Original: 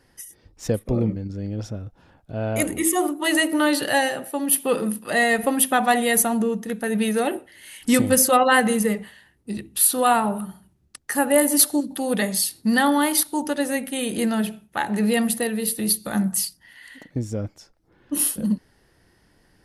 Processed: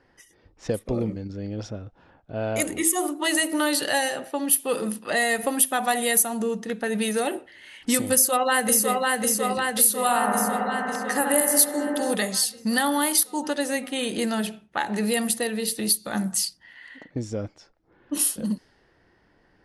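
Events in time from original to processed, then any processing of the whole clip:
8.13–8.98 echo throw 0.55 s, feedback 65%, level -3.5 dB
10.02–12.15 analogue delay 66 ms, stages 1024, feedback 84%, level -5.5 dB
whole clip: low-pass opened by the level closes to 2100 Hz, open at -15 dBFS; tone controls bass -6 dB, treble +8 dB; compressor 2:1, threshold -24 dBFS; gain +1 dB

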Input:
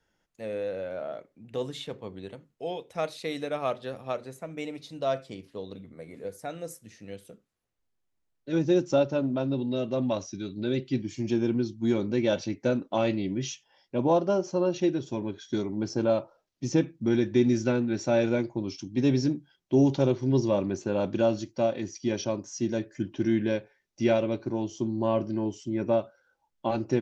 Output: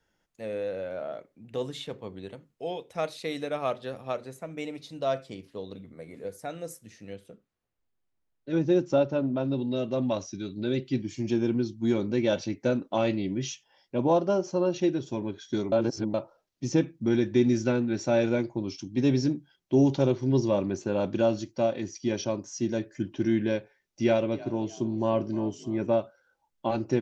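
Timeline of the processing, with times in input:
7.13–9.45 high shelf 5400 Hz -11.5 dB
15.72–16.14 reverse
24.04–25.87 frequency-shifting echo 0.306 s, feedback 41%, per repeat +45 Hz, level -19.5 dB

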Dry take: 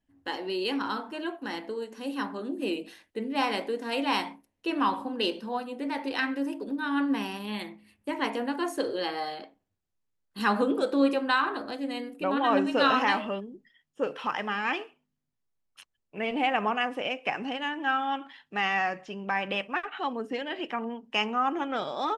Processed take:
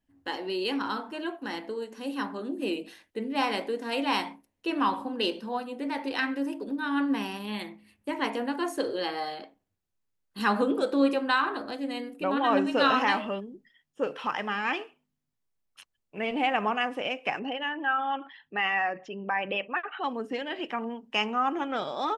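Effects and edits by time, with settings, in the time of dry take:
17.39–20.04 formant sharpening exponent 1.5

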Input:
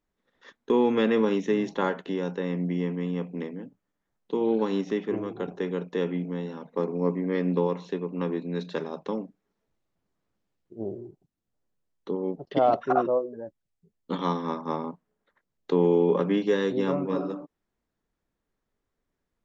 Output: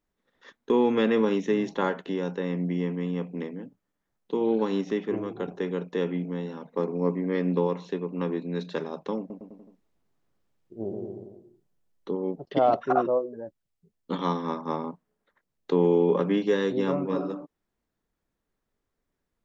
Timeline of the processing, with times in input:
9.18–12.15 bouncing-ball echo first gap 0.12 s, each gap 0.9×, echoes 5

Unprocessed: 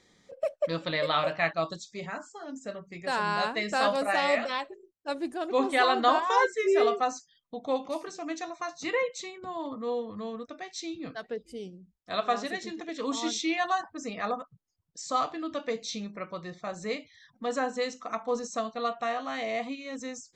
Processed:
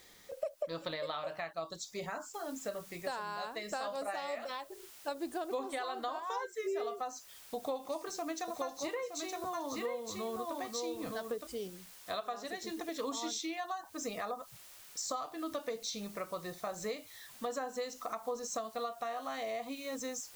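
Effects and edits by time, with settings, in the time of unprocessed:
2.34 noise floor step -68 dB -59 dB
7.56–11.47 echo 0.917 s -4.5 dB
whole clip: bell 190 Hz -9.5 dB 2 oct; compressor 12:1, threshold -37 dBFS; dynamic EQ 2300 Hz, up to -8 dB, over -57 dBFS, Q 0.85; gain +4.5 dB

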